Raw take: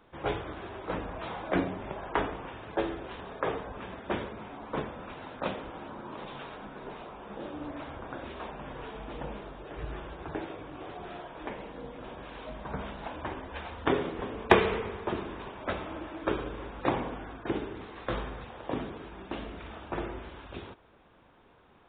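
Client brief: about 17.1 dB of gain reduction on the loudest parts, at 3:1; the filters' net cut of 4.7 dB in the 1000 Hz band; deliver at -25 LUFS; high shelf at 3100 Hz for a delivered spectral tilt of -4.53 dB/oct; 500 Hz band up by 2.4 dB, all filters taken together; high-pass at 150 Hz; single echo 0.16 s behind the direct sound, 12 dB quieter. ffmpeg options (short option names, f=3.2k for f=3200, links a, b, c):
-af "highpass=150,equalizer=f=500:t=o:g=5,equalizer=f=1k:t=o:g=-7.5,highshelf=f=3.1k:g=-5,acompressor=threshold=-38dB:ratio=3,aecho=1:1:160:0.251,volume=17.5dB"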